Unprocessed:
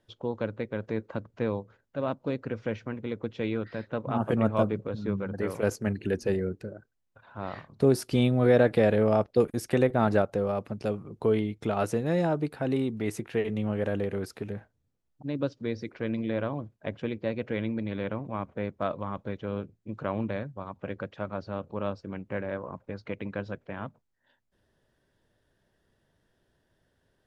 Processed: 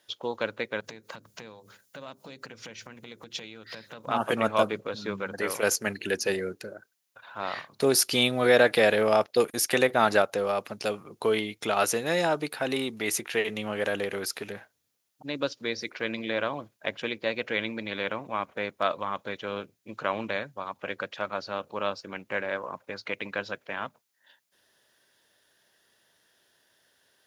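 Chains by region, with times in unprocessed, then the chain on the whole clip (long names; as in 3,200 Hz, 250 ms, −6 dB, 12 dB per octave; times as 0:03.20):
0:00.80–0:04.08: bass and treble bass +9 dB, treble +11 dB + downward compressor 20 to 1, threshold −37 dBFS + mains-hum notches 50/100/150/200/250/300/350/400 Hz
whole clip: high-pass filter 940 Hz 6 dB per octave; high-shelf EQ 2,600 Hz +10 dB; notch filter 8,000 Hz, Q 8.3; level +7 dB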